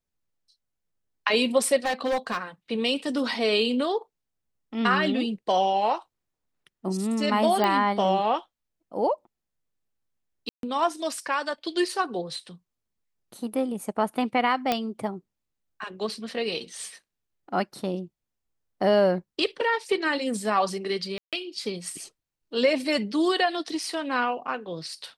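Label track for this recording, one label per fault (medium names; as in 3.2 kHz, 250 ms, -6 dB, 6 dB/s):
1.850000	2.430000	clipped -21.5 dBFS
7.640000	7.640000	pop -12 dBFS
10.490000	10.630000	dropout 142 ms
14.720000	14.720000	pop -9 dBFS
21.180000	21.330000	dropout 147 ms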